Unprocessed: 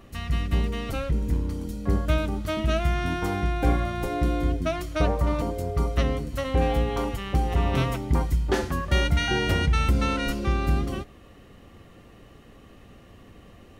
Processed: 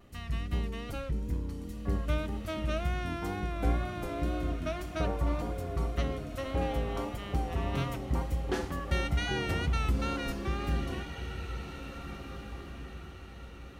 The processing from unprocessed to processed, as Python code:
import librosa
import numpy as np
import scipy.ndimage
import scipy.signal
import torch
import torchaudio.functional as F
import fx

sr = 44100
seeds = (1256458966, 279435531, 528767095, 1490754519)

y = fx.wow_flutter(x, sr, seeds[0], rate_hz=2.1, depth_cents=51.0)
y = fx.echo_diffused(y, sr, ms=1813, feedback_pct=40, wet_db=-9.5)
y = F.gain(torch.from_numpy(y), -8.0).numpy()